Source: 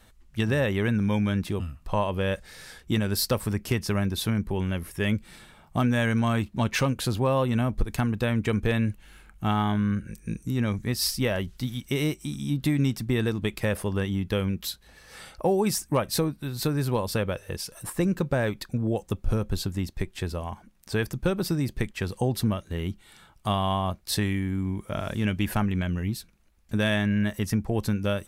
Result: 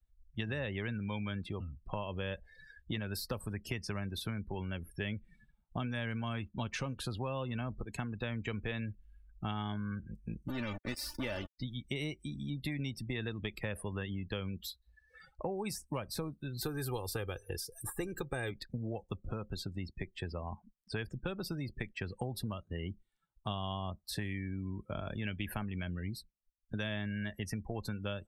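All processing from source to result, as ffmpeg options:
-filter_complex "[0:a]asettb=1/sr,asplit=3[a][b][c];[a]atrim=end=10.484[d];[b]atrim=start=10.48:end=11.58,asetpts=PTS-STARTPTS,afade=t=in:d=0.004:c=qsin,afade=t=out:st=1.096:d=0.004:c=qsin,aeval=exprs='val(0)*gte(abs(val(0)),0.0355)':c=same,aecho=1:1:3.4:0.51,atrim=end_sample=48510[e];[c]atrim=start=11.576[f];[d][e]acrossfade=d=0.004:c1=hsin:c2=qsin[g];[g][f]acrossfade=d=0.004:c1=qsin:c2=hsin,asettb=1/sr,asplit=3[h][i][j];[h]atrim=end=16.614[k];[i]atrim=start=16.61:end=18.51,asetpts=PTS-STARTPTS,afade=t=in:d=0.004:c=qsin,afade=t=out:st=1.896:d=0.004:c=qsin,highshelf=f=6.4k:g=11,aecho=1:1:2.5:0.6,atrim=end_sample=83790[l];[j]atrim=start=18.506[m];[k][l]acrossfade=d=0.004:c1=hsin:c2=qsin[n];[n][m]acrossfade=d=0.004:c1=qsin:c2=hsin,afftdn=nr=33:nf=-39,acrossover=split=84|710|2400[o][p][q][r];[o]acompressor=threshold=-43dB:ratio=4[s];[p]acompressor=threshold=-35dB:ratio=4[t];[q]acompressor=threshold=-41dB:ratio=4[u];[r]acompressor=threshold=-39dB:ratio=4[v];[s][t][u][v]amix=inputs=4:normalize=0,volume=-4dB"

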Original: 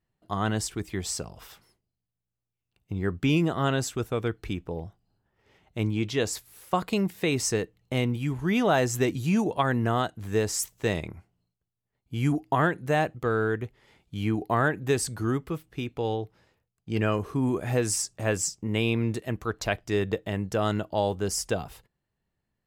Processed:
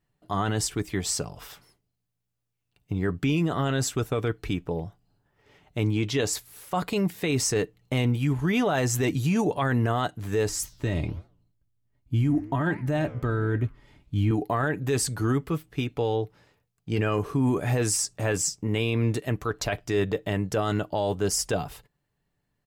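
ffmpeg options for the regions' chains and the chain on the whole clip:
-filter_complex "[0:a]asettb=1/sr,asplit=3[a][b][c];[a]atrim=end=10.494[d];[b]atrim=start=10.49:end=14.31,asetpts=PTS-STARTPTS,afade=t=in:d=0.004:c=qsin,afade=t=out:st=3.816:d=0.004:c=qsin,bass=f=250:g=13,treble=f=4k:g=-2,aecho=1:1:3.2:0.46,atrim=end_sample=168462,flanger=delay=6.3:depth=9.6:regen=-90:speed=1.3:shape=triangular[e];[c]atrim=start=14.306[f];[d][e]acrossfade=d=0.004:c1=hsin:c2=qsin[g];[g][f]acrossfade=d=0.004:c1=qsin:c2=hsin,aecho=1:1:6.9:0.32,alimiter=limit=-20dB:level=0:latency=1:release=15,volume=3.5dB"

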